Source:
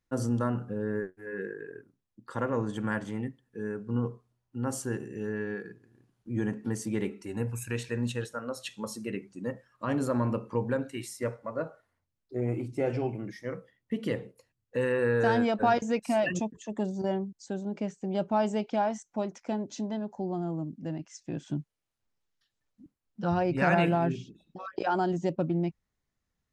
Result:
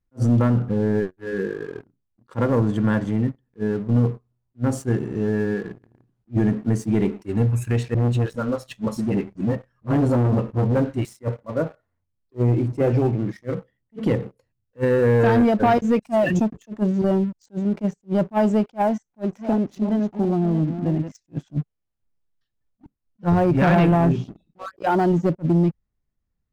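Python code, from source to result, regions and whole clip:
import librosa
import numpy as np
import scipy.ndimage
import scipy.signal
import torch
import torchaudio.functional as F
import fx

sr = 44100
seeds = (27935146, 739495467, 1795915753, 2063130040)

y = fx.chain(x, sr, fx.low_shelf(hz=210.0, db=6.5),
    fx.dispersion(late='highs', ms=45.0, hz=340.0),
    fx.transformer_sat(knee_hz=770.0), at=(7.94, 11.05))
y = fx.chain(y, sr, fx.reverse_delay(ms=358, wet_db=-10.5),
    fx.high_shelf(hz=6500.0, db=-11.5), at=(18.82, 21.12))
y = fx.tilt_eq(y, sr, slope=-2.5)
y = fx.leveller(y, sr, passes=2)
y = fx.attack_slew(y, sr, db_per_s=470.0)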